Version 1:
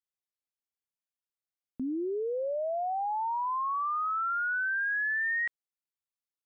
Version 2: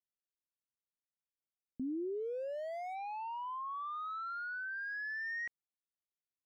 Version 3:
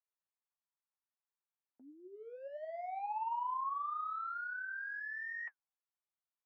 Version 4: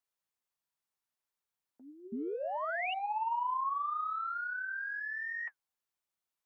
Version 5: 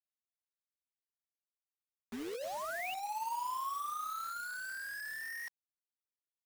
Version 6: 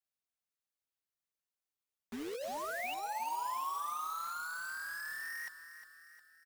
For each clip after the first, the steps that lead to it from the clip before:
local Wiener filter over 41 samples; trim -4 dB
flange 1.5 Hz, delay 4 ms, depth 8.2 ms, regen +46%; ladder band-pass 1.1 kHz, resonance 40%; trim +14.5 dB
painted sound rise, 2.12–2.94 s, 220–3000 Hz -41 dBFS; trim +4 dB
bit crusher 7-bit; trim -4.5 dB
feedback delay 357 ms, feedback 52%, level -11.5 dB

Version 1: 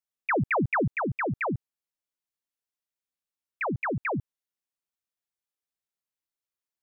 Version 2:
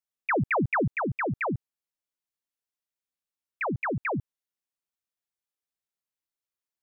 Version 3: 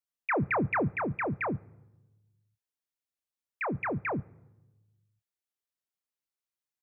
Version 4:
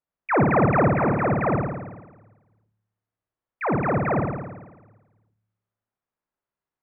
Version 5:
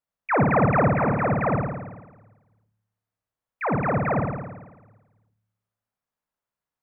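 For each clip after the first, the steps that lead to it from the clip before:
no audible change
doubling 28 ms -12 dB; on a send at -23 dB: reverberation RT60 1.1 s, pre-delay 3 ms; on the sum: trim -3 dB
low-pass 1.3 kHz 12 dB/octave; flutter echo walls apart 9.5 m, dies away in 1.2 s; trim +8.5 dB
peaking EQ 350 Hz -8.5 dB 0.34 oct

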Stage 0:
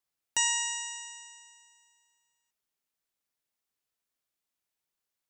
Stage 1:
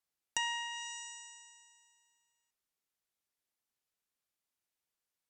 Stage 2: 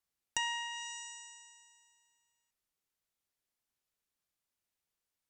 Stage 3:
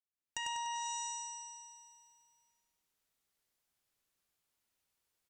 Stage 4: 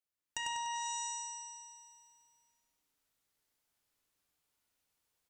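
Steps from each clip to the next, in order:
low-pass that closes with the level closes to 2.8 kHz, closed at -28 dBFS; trim -2.5 dB
bass shelf 130 Hz +6.5 dB
fade-in on the opening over 1.06 s; feedback delay 98 ms, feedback 54%, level -3 dB; trim +2.5 dB
FDN reverb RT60 1.2 s, low-frequency decay 1.05×, high-frequency decay 0.25×, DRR 8.5 dB; trim +1 dB

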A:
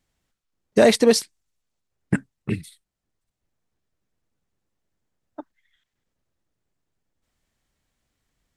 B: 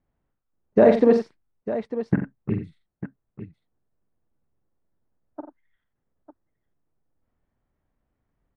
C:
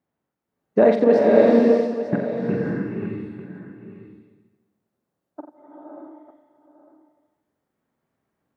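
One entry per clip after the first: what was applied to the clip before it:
low-pass 1.2 kHz 12 dB/octave; multi-tap echo 46/89/900 ms -8/-11/-12.5 dB
high-pass 170 Hz 12 dB/octave; swelling reverb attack 610 ms, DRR -3 dB

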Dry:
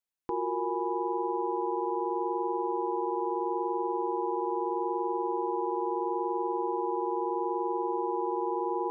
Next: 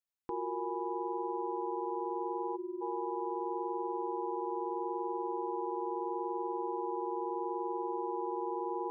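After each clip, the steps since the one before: spectral selection erased 2.56–2.81 s, 430–1000 Hz; trim -5.5 dB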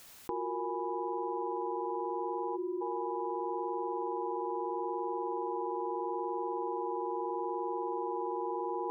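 level flattener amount 100%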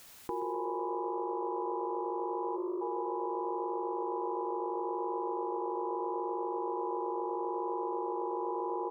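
frequency-shifting echo 125 ms, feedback 61%, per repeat +52 Hz, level -13 dB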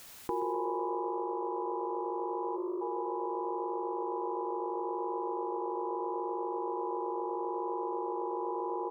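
gain riding 2 s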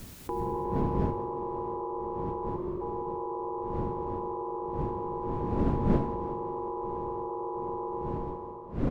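fade out at the end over 0.91 s; wind noise 230 Hz -35 dBFS; frequency-shifting echo 181 ms, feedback 59%, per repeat +44 Hz, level -16 dB

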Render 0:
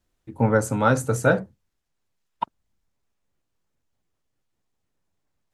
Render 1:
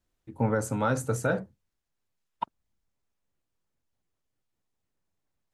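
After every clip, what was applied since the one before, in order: peak limiter -10.5 dBFS, peak gain reduction 5.5 dB; trim -5 dB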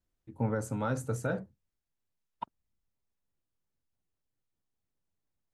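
bass shelf 350 Hz +4.5 dB; trim -7.5 dB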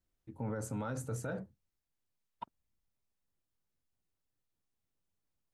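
peak limiter -28.5 dBFS, peak gain reduction 8.5 dB; trim -1 dB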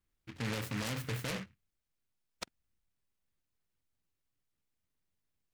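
delay time shaken by noise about 1.8 kHz, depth 0.3 ms; trim +1 dB

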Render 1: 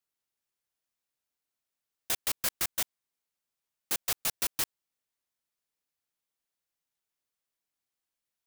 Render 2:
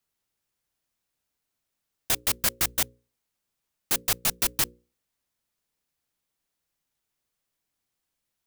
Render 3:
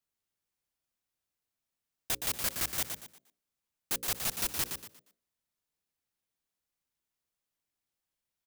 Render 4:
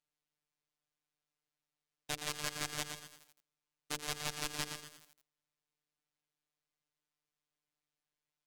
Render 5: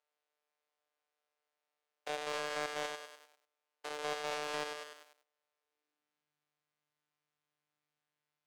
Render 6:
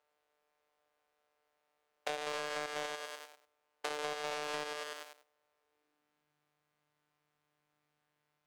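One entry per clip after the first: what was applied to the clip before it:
bass shelf 280 Hz +8 dB; hum notches 60/120/180/240/300/360/420/480/540 Hz; modulation noise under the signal 33 dB; trim +5.5 dB
frequency-shifting echo 118 ms, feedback 31%, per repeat +44 Hz, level -6.5 dB; trim -7.5 dB
robot voice 149 Hz; distance through air 58 m; bit-crushed delay 83 ms, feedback 80%, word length 7-bit, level -13 dB; trim +1 dB
spectrogram pixelated in time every 100 ms; high-pass sweep 500 Hz -> 120 Hz, 5.58–6.49 s; overdrive pedal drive 13 dB, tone 1.6 kHz, clips at -17 dBFS; trim +1 dB
compression 6:1, threshold -46 dBFS, peak gain reduction 13.5 dB; tape noise reduction on one side only decoder only; trim +11 dB

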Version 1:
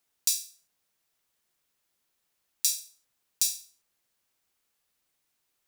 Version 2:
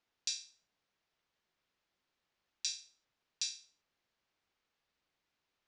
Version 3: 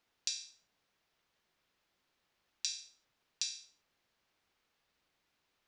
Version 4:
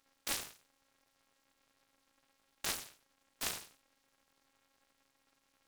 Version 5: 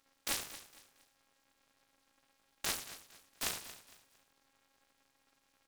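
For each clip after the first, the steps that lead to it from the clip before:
Bessel low-pass 3.8 kHz, order 8; trim -1 dB
compression 5:1, threshold -38 dBFS, peak gain reduction 6.5 dB; trim +5 dB
peak limiter -26.5 dBFS, peak gain reduction 11.5 dB; robot voice 272 Hz; delay time shaken by noise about 2.3 kHz, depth 0.075 ms; trim +7.5 dB
feedback delay 229 ms, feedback 32%, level -14.5 dB; trim +1 dB

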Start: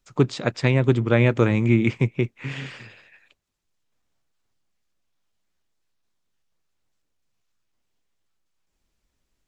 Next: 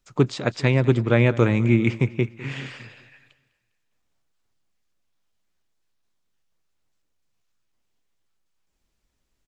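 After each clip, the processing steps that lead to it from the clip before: feedback delay 202 ms, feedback 48%, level -19 dB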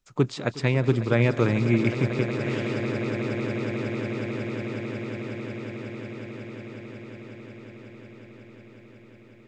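echo with a slow build-up 182 ms, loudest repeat 8, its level -13 dB; trim -3.5 dB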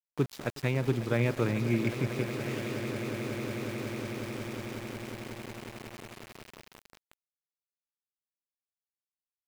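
small samples zeroed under -32 dBFS; trim -6.5 dB

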